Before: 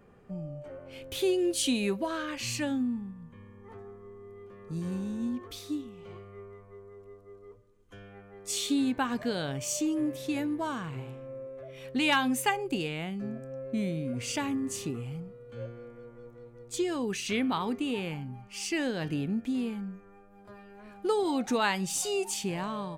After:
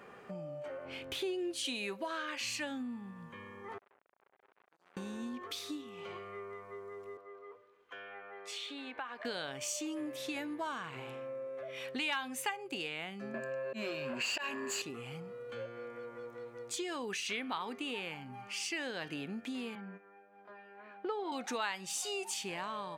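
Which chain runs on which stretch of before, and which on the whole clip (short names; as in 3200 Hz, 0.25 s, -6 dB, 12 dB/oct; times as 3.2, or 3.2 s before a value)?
0.85–1.65 tilt -2 dB/oct + notch 550 Hz, Q 6.8
3.78–4.97 compressor 10:1, threshold -44 dBFS + resonator 270 Hz, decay 0.55 s, mix 90% + core saturation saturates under 1800 Hz
7.17–9.25 three-band isolator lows -15 dB, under 370 Hz, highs -18 dB, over 3600 Hz + compressor 1.5:1, threshold -56 dBFS
13.34–14.82 ripple EQ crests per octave 1.4, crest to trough 17 dB + auto swell 0.164 s + overdrive pedal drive 18 dB, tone 3300 Hz, clips at -19.5 dBFS
19.75–21.32 gate -46 dBFS, range -9 dB + BPF 190–2400 Hz + notch 1200 Hz, Q 19
whole clip: HPF 1400 Hz 6 dB/oct; high shelf 4700 Hz -10 dB; compressor 2.5:1, threshold -58 dBFS; gain +15 dB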